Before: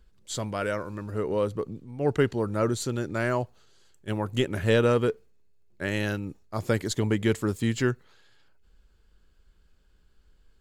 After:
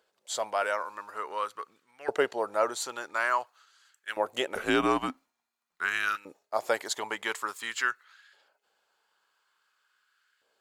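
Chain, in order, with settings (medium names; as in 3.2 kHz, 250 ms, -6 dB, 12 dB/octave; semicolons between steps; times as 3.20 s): LFO high-pass saw up 0.48 Hz 580–1600 Hz; 4.55–6.16 s: frequency shift -180 Hz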